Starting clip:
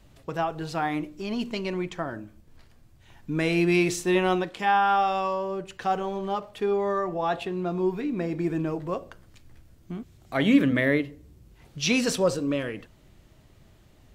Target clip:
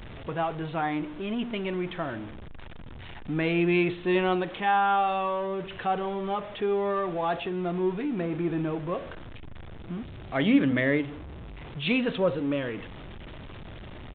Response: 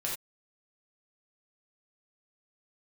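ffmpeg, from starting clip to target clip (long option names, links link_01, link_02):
-af "aeval=exprs='val(0)+0.5*0.02*sgn(val(0))':channel_layout=same,aresample=8000,aresample=44100,volume=-2.5dB"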